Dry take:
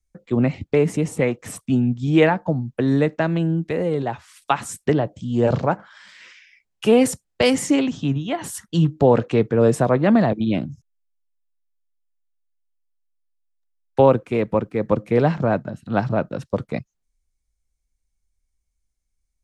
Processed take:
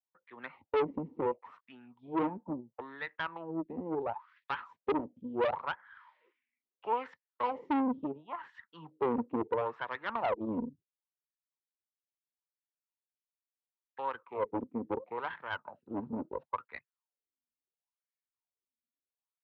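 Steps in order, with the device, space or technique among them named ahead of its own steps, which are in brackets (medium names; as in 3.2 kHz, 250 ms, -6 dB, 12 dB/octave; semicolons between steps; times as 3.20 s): wah-wah guitar rig (wah-wah 0.73 Hz 240–1800 Hz, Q 7.9; valve stage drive 29 dB, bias 0.65; cabinet simulation 96–3800 Hz, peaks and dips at 130 Hz -8 dB, 190 Hz -6 dB, 300 Hz -4 dB, 660 Hz -5 dB, 950 Hz +9 dB, 1.6 kHz -5 dB); trim +4.5 dB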